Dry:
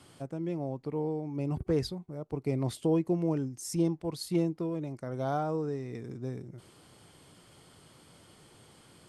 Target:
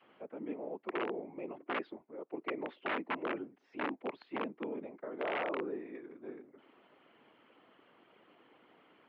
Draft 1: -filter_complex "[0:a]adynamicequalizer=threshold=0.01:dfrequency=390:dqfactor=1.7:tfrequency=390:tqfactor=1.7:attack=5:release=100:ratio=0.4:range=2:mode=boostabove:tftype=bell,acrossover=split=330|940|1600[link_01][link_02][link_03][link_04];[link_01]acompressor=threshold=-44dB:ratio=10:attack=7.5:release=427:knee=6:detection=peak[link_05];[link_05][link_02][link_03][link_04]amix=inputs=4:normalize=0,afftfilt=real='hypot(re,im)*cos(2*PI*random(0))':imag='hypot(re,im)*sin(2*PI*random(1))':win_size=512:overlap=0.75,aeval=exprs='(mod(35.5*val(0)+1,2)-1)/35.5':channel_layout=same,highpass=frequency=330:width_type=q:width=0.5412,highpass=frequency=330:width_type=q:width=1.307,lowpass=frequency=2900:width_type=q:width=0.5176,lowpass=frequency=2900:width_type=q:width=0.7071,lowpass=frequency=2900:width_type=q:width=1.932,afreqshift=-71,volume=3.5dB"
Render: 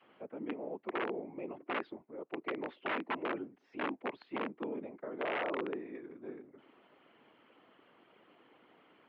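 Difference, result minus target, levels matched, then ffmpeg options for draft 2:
downward compressor: peak gain reduction −7.5 dB
-filter_complex "[0:a]adynamicequalizer=threshold=0.01:dfrequency=390:dqfactor=1.7:tfrequency=390:tqfactor=1.7:attack=5:release=100:ratio=0.4:range=2:mode=boostabove:tftype=bell,acrossover=split=330|940|1600[link_01][link_02][link_03][link_04];[link_01]acompressor=threshold=-52.5dB:ratio=10:attack=7.5:release=427:knee=6:detection=peak[link_05];[link_05][link_02][link_03][link_04]amix=inputs=4:normalize=0,afftfilt=real='hypot(re,im)*cos(2*PI*random(0))':imag='hypot(re,im)*sin(2*PI*random(1))':win_size=512:overlap=0.75,aeval=exprs='(mod(35.5*val(0)+1,2)-1)/35.5':channel_layout=same,highpass=frequency=330:width_type=q:width=0.5412,highpass=frequency=330:width_type=q:width=1.307,lowpass=frequency=2900:width_type=q:width=0.5176,lowpass=frequency=2900:width_type=q:width=0.7071,lowpass=frequency=2900:width_type=q:width=1.932,afreqshift=-71,volume=3.5dB"

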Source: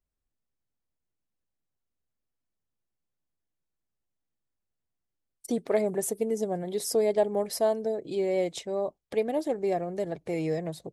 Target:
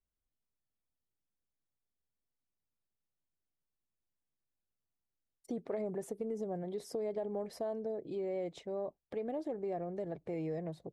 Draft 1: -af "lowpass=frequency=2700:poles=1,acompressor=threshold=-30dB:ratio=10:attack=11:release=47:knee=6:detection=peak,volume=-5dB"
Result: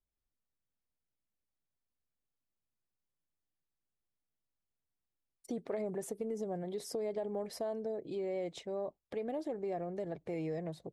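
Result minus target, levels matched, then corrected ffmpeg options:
2,000 Hz band +3.0 dB
-af "lowpass=frequency=1300:poles=1,acompressor=threshold=-30dB:ratio=10:attack=11:release=47:knee=6:detection=peak,volume=-5dB"

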